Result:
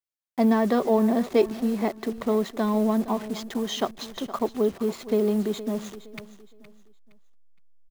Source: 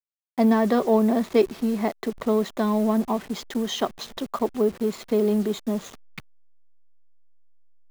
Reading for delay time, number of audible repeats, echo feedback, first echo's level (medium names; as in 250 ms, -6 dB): 466 ms, 2, 31%, -15.0 dB